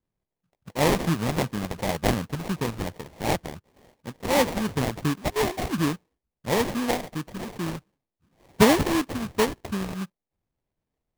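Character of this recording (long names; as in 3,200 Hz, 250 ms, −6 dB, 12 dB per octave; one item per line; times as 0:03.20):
phaser sweep stages 2, 2.8 Hz, lowest notch 350–3,100 Hz
aliases and images of a low sample rate 1,400 Hz, jitter 20%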